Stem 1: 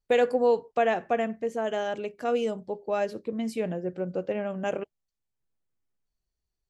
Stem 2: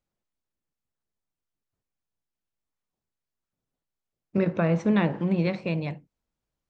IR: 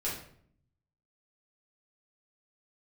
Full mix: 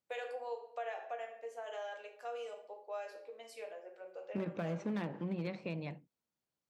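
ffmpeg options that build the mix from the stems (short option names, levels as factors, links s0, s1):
-filter_complex "[0:a]highpass=f=560:w=0.5412,highpass=f=560:w=1.3066,volume=0.168,asplit=2[s0][s1];[s1]volume=0.708[s2];[1:a]volume=7.08,asoftclip=hard,volume=0.141,highpass=140,volume=0.562[s3];[2:a]atrim=start_sample=2205[s4];[s2][s4]afir=irnorm=-1:irlink=0[s5];[s0][s3][s5]amix=inputs=3:normalize=0,acompressor=threshold=0.00891:ratio=2"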